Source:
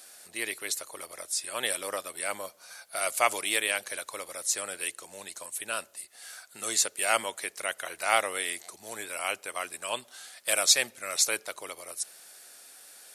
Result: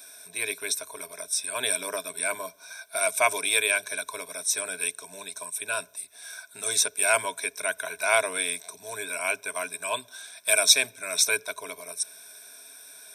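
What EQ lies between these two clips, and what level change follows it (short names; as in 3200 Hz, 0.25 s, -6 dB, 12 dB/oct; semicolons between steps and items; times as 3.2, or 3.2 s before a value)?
ripple EQ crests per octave 1.6, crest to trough 16 dB; 0.0 dB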